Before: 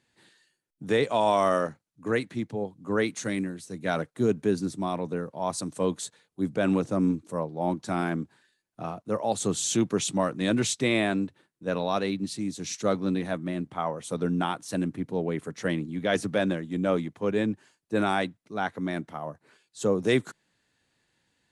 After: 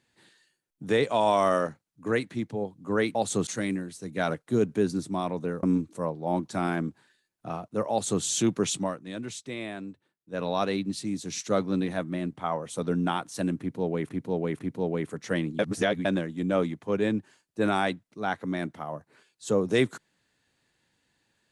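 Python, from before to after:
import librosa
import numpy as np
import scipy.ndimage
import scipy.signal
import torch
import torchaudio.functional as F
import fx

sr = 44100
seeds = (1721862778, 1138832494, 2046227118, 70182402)

y = fx.edit(x, sr, fx.cut(start_s=5.31, length_s=1.66),
    fx.duplicate(start_s=9.25, length_s=0.32, to_s=3.15),
    fx.fade_down_up(start_s=10.07, length_s=1.77, db=-11.5, fade_s=0.26),
    fx.repeat(start_s=14.93, length_s=0.5, count=3),
    fx.reverse_span(start_s=15.93, length_s=0.46), tone=tone)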